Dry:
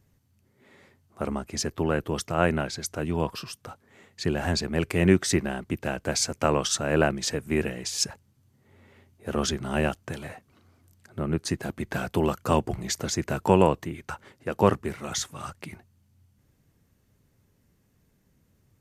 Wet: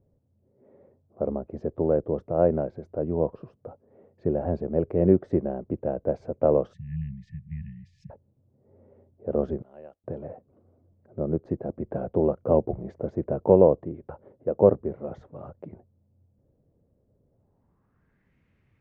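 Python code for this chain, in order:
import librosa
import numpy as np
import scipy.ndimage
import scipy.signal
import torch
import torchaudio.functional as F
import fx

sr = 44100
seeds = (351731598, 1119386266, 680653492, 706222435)

y = fx.brickwall_bandstop(x, sr, low_hz=200.0, high_hz=1700.0, at=(6.73, 8.1))
y = fx.pre_emphasis(y, sr, coefficient=0.97, at=(9.62, 10.04))
y = fx.filter_sweep_lowpass(y, sr, from_hz=550.0, to_hz=2300.0, start_s=17.27, end_s=18.35, q=3.0)
y = y * 10.0 ** (-2.5 / 20.0)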